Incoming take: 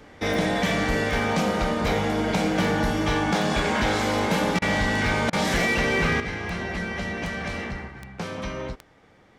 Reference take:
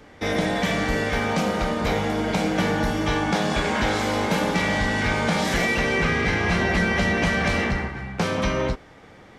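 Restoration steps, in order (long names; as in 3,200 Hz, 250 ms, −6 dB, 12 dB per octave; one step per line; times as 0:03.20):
clipped peaks rebuilt −16.5 dBFS
click removal
repair the gap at 0:04.59/0:05.30, 28 ms
level 0 dB, from 0:06.20 +8.5 dB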